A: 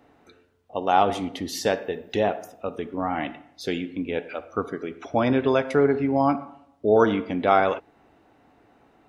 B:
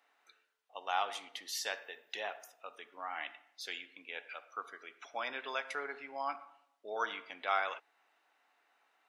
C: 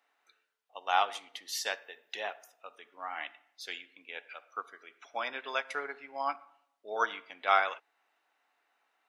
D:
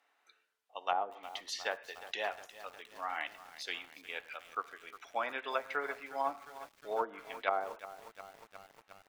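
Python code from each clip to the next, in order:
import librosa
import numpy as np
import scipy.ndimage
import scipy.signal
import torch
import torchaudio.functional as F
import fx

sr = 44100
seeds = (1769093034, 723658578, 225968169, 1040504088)

y1 = scipy.signal.sosfilt(scipy.signal.butter(2, 1300.0, 'highpass', fs=sr, output='sos'), x)
y1 = F.gain(torch.from_numpy(y1), -6.0).numpy()
y2 = fx.upward_expand(y1, sr, threshold_db=-49.0, expansion=1.5)
y2 = F.gain(torch.from_numpy(y2), 7.5).numpy()
y3 = fx.env_lowpass_down(y2, sr, base_hz=540.0, full_db=-26.5)
y3 = fx.echo_crushed(y3, sr, ms=358, feedback_pct=80, bits=8, wet_db=-14.5)
y3 = F.gain(torch.from_numpy(y3), 1.0).numpy()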